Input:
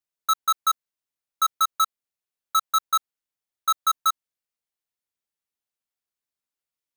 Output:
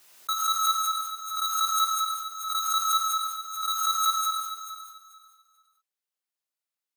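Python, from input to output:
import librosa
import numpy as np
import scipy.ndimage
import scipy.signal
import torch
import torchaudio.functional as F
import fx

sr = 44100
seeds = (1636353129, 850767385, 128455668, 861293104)

y = fx.highpass(x, sr, hz=430.0, slope=6)
y = fx.echo_feedback(y, sr, ms=438, feedback_pct=23, wet_db=-12.0)
y = fx.rev_gated(y, sr, seeds[0], gate_ms=410, shape='flat', drr_db=-5.5)
y = fx.pre_swell(y, sr, db_per_s=56.0)
y = F.gain(torch.from_numpy(y), -7.5).numpy()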